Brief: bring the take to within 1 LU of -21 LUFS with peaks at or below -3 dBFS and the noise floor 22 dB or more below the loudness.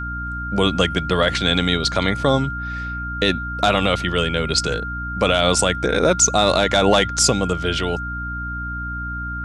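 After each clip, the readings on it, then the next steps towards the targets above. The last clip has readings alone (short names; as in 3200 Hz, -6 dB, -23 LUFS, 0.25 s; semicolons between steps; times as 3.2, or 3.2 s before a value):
hum 60 Hz; harmonics up to 300 Hz; hum level -27 dBFS; steady tone 1400 Hz; tone level -27 dBFS; loudness -19.5 LUFS; peak -3.0 dBFS; loudness target -21.0 LUFS
-> de-hum 60 Hz, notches 5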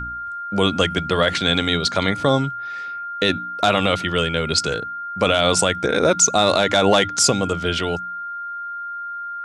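hum none; steady tone 1400 Hz; tone level -27 dBFS
-> notch 1400 Hz, Q 30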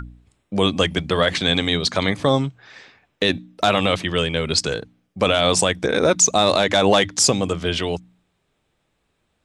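steady tone none; loudness -19.0 LUFS; peak -4.0 dBFS; loudness target -21.0 LUFS
-> gain -2 dB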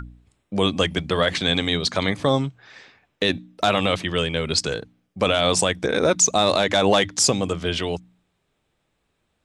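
loudness -21.0 LUFS; peak -6.0 dBFS; noise floor -73 dBFS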